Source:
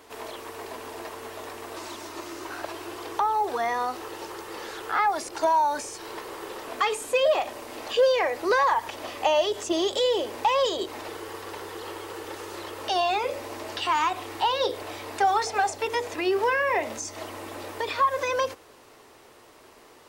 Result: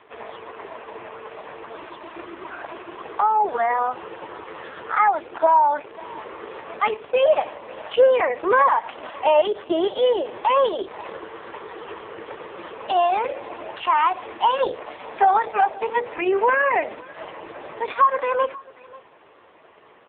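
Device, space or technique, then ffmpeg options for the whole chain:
satellite phone: -af "highpass=360,lowpass=3100,aecho=1:1:536:0.075,volume=6.5dB" -ar 8000 -c:a libopencore_amrnb -b:a 4750

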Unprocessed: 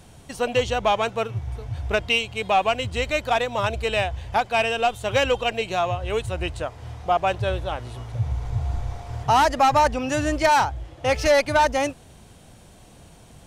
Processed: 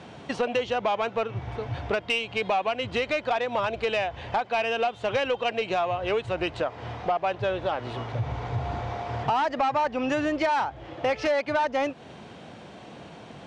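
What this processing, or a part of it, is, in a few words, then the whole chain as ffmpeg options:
AM radio: -af "highpass=190,lowpass=3300,lowpass=8700,acompressor=threshold=-31dB:ratio=5,asoftclip=type=tanh:threshold=-24.5dB,volume=8.5dB"

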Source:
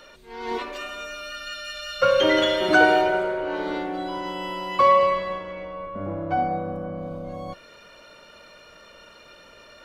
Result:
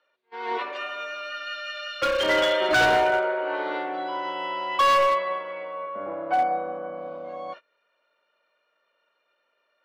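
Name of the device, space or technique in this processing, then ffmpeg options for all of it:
walkie-talkie: -filter_complex "[0:a]highpass=530,lowpass=2900,asoftclip=type=hard:threshold=-19.5dB,agate=range=-24dB:threshold=-42dB:ratio=16:detection=peak,asettb=1/sr,asplit=3[link_01][link_02][link_03];[link_01]atrim=end=1.884[link_04];[link_02]atrim=start=1.88:end=2.29,asetpts=PTS-STARTPTS,afade=type=in:duration=0.004:curve=qsin,afade=type=out:start_time=0.406:duration=0.004:curve=qsin,equalizer=frequency=720:width=0.66:gain=-5[link_05];[link_03]atrim=start=2.286[link_06];[link_04][link_05]acrossfade=duration=0.004:curve1=hsin:curve2=qsin[link_07];[link_07][link_06]acrossfade=duration=0.004:curve1=qsin:curve2=hsin,volume=3dB"

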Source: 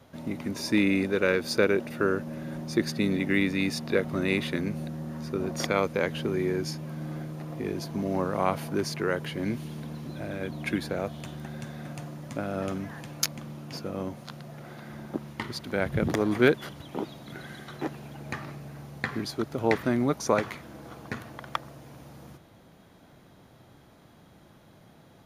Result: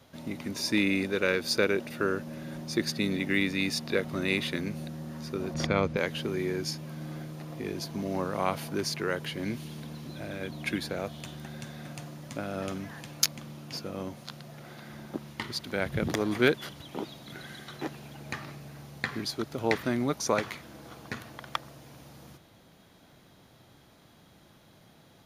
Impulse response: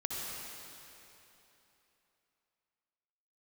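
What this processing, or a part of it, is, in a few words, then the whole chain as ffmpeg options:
presence and air boost: -filter_complex "[0:a]asettb=1/sr,asplit=3[link_01][link_02][link_03];[link_01]atrim=end=5.544[link_04];[link_02]atrim=start=5.54:end=5.97,asetpts=PTS-STARTPTS,afade=type=in:duration=0.004:curve=qsin,afade=type=out:start_time=0.426:duration=0.004:curve=qsin,aemphasis=mode=reproduction:type=bsi[link_05];[link_03]atrim=start=5.966[link_06];[link_04][link_05]acrossfade=duration=0.004:curve1=hsin:curve2=qsin[link_07];[link_07][link_06]acrossfade=duration=0.004:curve1=qsin:curve2=hsin,equalizer=frequency=4100:width_type=o:width=2:gain=6,highshelf=frequency=10000:gain=6.5,volume=-3.5dB"

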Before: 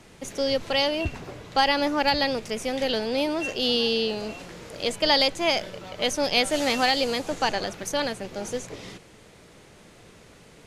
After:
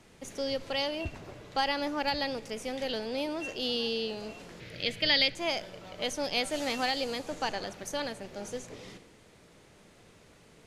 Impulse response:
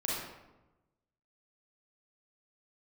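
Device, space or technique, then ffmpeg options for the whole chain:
compressed reverb return: -filter_complex "[0:a]asettb=1/sr,asplit=3[link_01][link_02][link_03];[link_01]atrim=end=4.604[link_04];[link_02]atrim=start=4.6:end=5.35,asetpts=PTS-STARTPTS,afade=type=in:duration=0.004:curve=qsin,afade=type=out:start_time=0.746:duration=0.004:curve=qsin,equalizer=frequency=125:width_type=o:width=1:gain=9,equalizer=frequency=1000:width_type=o:width=1:gain=-11,equalizer=frequency=2000:width_type=o:width=1:gain=10,equalizer=frequency=4000:width_type=o:width=1:gain=7,equalizer=frequency=8000:width_type=o:width=1:gain=-10[link_05];[link_03]atrim=start=5.346[link_06];[link_04][link_05]acrossfade=duration=0.004:curve1=hsin:curve2=qsin[link_07];[link_07][link_06]acrossfade=duration=0.004:curve1=qsin:curve2=hsin,asplit=2[link_08][link_09];[1:a]atrim=start_sample=2205[link_10];[link_09][link_10]afir=irnorm=-1:irlink=0,acompressor=threshold=-26dB:ratio=6,volume=-14dB[link_11];[link_08][link_11]amix=inputs=2:normalize=0,volume=-8.5dB"

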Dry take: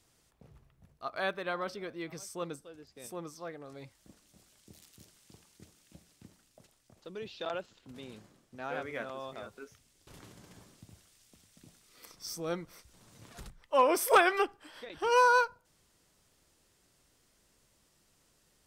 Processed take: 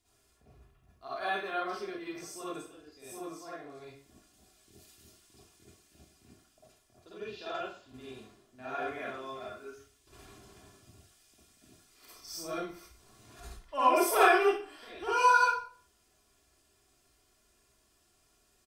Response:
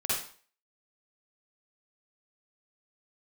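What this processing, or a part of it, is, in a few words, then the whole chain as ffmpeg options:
microphone above a desk: -filter_complex "[0:a]aecho=1:1:2.9:0.57[link_01];[1:a]atrim=start_sample=2205[link_02];[link_01][link_02]afir=irnorm=-1:irlink=0,volume=-8dB"

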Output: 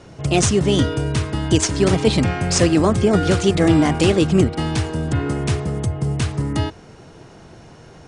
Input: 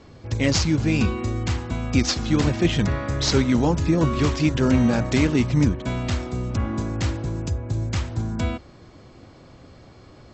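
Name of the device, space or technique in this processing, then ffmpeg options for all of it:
nightcore: -af "asetrate=56448,aresample=44100,volume=4dB"

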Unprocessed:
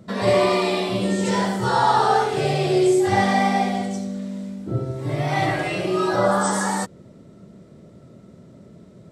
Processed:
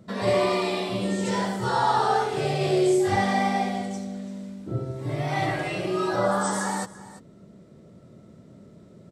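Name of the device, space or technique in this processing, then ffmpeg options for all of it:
ducked delay: -filter_complex "[0:a]asplit=3[link_01][link_02][link_03];[link_02]adelay=339,volume=-4.5dB[link_04];[link_03]apad=whole_len=416987[link_05];[link_04][link_05]sidechaincompress=threshold=-33dB:ratio=16:attack=28:release=1370[link_06];[link_01][link_06]amix=inputs=2:normalize=0,asettb=1/sr,asplit=3[link_07][link_08][link_09];[link_07]atrim=end=2.584[link_10];[link_08]atrim=start=2.58:end=3.16,asetpts=PTS-STARTPTS,afade=type=in:duration=0.004:curve=qsin,afade=type=out:start_time=0.576:duration=0.004:curve=qsin,asplit=2[link_11][link_12];[link_12]adelay=29,volume=-3dB[link_13];[link_11][link_13]amix=inputs=2:normalize=0,atrim=end_sample=25578[link_14];[link_09]atrim=start=3.156[link_15];[link_10][link_14]acrossfade=duration=0.004:curve1=hsin:curve2=qsin[link_16];[link_16][link_15]acrossfade=duration=0.004:curve1=qsin:curve2=hsin,volume=-4.5dB"

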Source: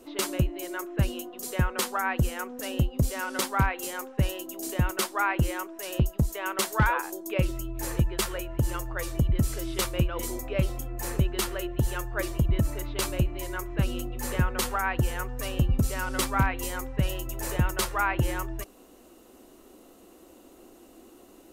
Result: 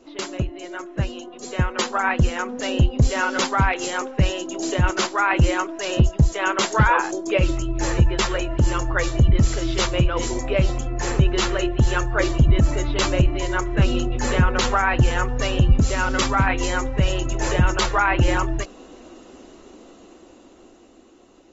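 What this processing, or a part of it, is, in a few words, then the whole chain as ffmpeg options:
low-bitrate web radio: -af "dynaudnorm=framelen=600:gausssize=7:maxgain=11dB,alimiter=limit=-9.5dB:level=0:latency=1:release=10" -ar 44100 -c:a aac -b:a 24k

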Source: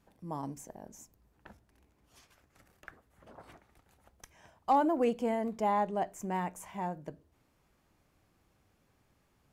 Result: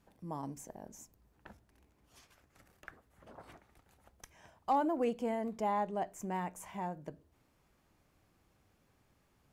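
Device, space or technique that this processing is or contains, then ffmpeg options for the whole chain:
parallel compression: -filter_complex "[0:a]asplit=2[link_01][link_02];[link_02]acompressor=threshold=-41dB:ratio=6,volume=-3.5dB[link_03];[link_01][link_03]amix=inputs=2:normalize=0,volume=-5dB"

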